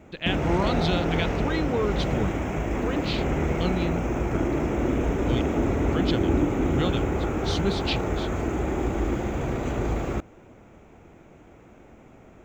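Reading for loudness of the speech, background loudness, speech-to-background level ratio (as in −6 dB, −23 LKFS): −31.0 LKFS, −26.5 LKFS, −4.5 dB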